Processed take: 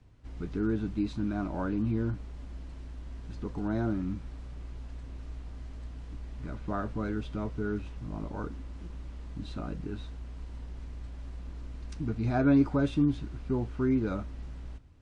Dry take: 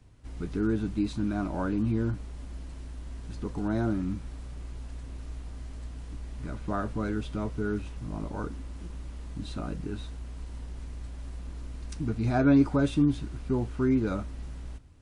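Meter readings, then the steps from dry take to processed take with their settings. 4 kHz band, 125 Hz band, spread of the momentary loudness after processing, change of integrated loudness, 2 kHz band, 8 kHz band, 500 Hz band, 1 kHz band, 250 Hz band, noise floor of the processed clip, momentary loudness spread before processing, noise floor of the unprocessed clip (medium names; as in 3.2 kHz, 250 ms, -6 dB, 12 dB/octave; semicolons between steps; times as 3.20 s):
-4.0 dB, -2.0 dB, 16 LU, -2.5 dB, -2.5 dB, no reading, -2.0 dB, -2.5 dB, -2.0 dB, -43 dBFS, 17 LU, -41 dBFS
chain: distance through air 76 m; trim -2 dB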